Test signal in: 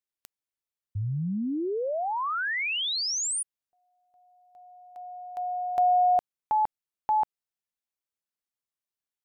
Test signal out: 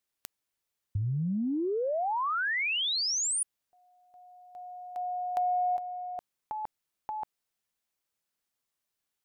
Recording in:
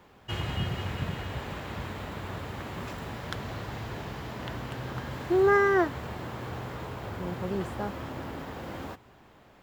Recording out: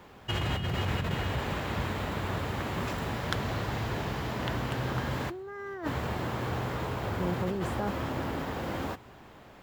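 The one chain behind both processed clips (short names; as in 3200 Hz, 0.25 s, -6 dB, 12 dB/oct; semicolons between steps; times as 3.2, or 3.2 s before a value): negative-ratio compressor -33 dBFS, ratio -1; gain +2 dB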